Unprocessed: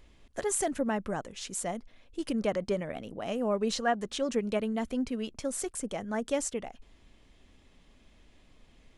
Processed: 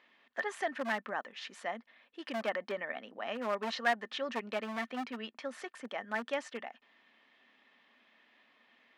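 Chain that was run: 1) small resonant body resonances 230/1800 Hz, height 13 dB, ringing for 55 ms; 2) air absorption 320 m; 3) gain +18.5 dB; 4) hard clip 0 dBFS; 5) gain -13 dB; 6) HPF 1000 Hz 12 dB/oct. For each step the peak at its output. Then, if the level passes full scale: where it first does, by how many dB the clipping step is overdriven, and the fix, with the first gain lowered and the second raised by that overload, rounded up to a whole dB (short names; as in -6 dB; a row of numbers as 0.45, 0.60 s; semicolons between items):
-11.0, -11.5, +7.0, 0.0, -13.0, -17.5 dBFS; step 3, 7.0 dB; step 3 +11.5 dB, step 5 -6 dB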